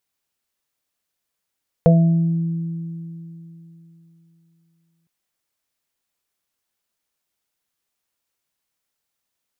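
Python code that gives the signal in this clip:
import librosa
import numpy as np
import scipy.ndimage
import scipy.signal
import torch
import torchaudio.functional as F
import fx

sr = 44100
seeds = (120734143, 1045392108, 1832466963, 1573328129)

y = fx.additive(sr, length_s=3.21, hz=166.0, level_db=-9, upper_db=(-19.5, -0.5, -7.0), decay_s=3.34, upper_decays_s=(3.49, 0.22, 0.64))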